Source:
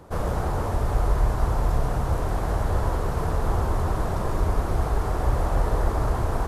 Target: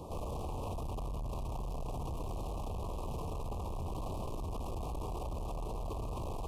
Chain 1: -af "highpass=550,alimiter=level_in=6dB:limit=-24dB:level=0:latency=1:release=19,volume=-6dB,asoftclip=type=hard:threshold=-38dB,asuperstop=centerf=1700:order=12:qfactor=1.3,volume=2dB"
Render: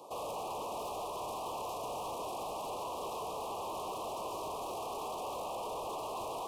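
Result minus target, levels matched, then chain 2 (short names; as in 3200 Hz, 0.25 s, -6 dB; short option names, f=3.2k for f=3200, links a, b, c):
500 Hz band +3.0 dB
-af "alimiter=level_in=6dB:limit=-24dB:level=0:latency=1:release=19,volume=-6dB,asoftclip=type=hard:threshold=-38dB,asuperstop=centerf=1700:order=12:qfactor=1.3,volume=2dB"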